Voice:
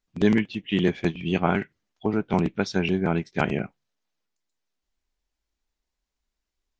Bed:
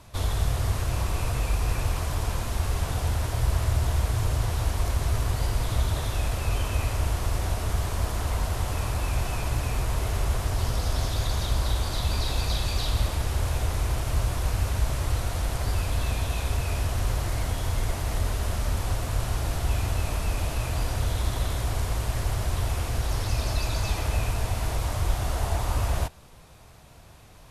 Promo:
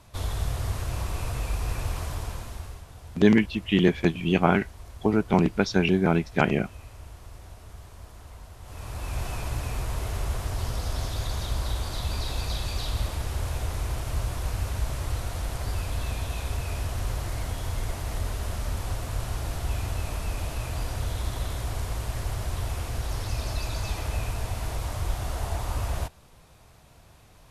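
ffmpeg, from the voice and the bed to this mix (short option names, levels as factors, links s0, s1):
-filter_complex "[0:a]adelay=3000,volume=1.26[s0];[1:a]volume=3.55,afade=t=out:st=2.04:d=0.8:silence=0.188365,afade=t=in:st=8.61:d=0.64:silence=0.188365[s1];[s0][s1]amix=inputs=2:normalize=0"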